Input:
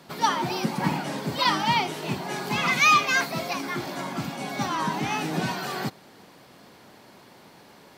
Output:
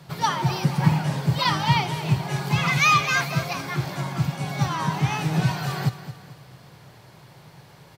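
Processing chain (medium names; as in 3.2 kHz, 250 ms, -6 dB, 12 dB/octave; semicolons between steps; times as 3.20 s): resonant low shelf 180 Hz +8.5 dB, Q 3; feedback delay 221 ms, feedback 42%, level -13 dB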